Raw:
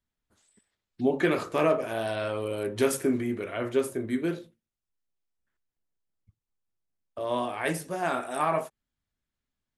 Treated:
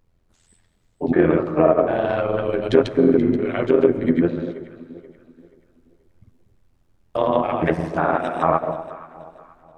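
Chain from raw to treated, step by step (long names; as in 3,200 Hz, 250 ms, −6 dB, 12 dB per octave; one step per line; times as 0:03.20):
treble cut that deepens with the level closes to 1,200 Hz, closed at −24 dBFS
automatic gain control gain up to 16 dB
granular cloud, pitch spread up and down by 0 semitones
background noise brown −60 dBFS
amplitude modulation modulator 85 Hz, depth 60%
delay that swaps between a low-pass and a high-pass 240 ms, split 960 Hz, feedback 58%, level −12 dB
on a send at −18 dB: convolution reverb RT60 1.4 s, pre-delay 95 ms
on the sum: level +1 dB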